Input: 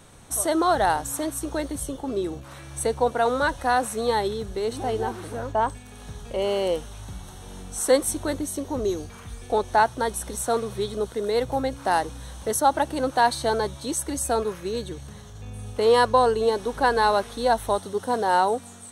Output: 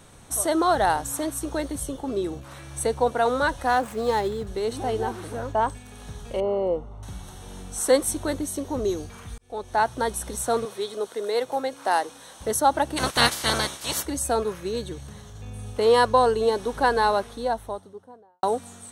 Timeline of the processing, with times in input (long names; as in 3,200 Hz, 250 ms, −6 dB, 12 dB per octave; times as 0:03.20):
0:03.67–0:04.47: running median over 9 samples
0:06.40–0:07.03: Savitzky-Golay smoothing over 65 samples
0:09.38–0:09.97: fade in
0:10.65–0:12.41: high-pass filter 360 Hz
0:12.96–0:14.04: ceiling on every frequency bin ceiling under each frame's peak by 28 dB
0:16.80–0:18.43: fade out and dull